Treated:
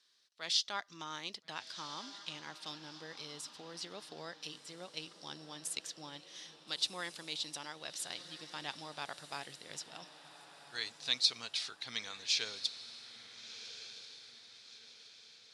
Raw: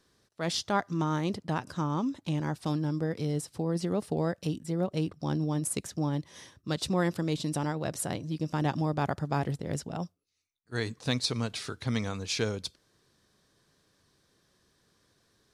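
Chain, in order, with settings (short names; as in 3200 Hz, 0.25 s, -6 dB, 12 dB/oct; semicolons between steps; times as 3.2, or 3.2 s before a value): band-pass 3900 Hz, Q 1.4; diffused feedback echo 1.386 s, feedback 45%, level -12.5 dB; gain +3 dB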